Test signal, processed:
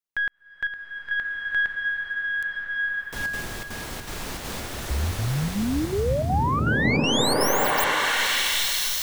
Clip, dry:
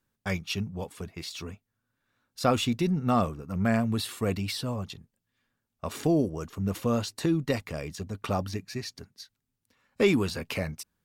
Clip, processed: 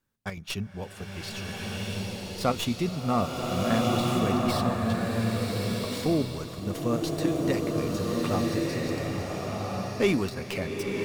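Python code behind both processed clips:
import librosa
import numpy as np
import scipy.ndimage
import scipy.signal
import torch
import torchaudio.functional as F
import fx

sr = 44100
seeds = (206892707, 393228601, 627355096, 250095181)

y = fx.tracing_dist(x, sr, depth_ms=0.074)
y = fx.chopper(y, sr, hz=2.7, depth_pct=65, duty_pct=80)
y = fx.rev_bloom(y, sr, seeds[0], attack_ms=1450, drr_db=-3.0)
y = y * 10.0 ** (-1.5 / 20.0)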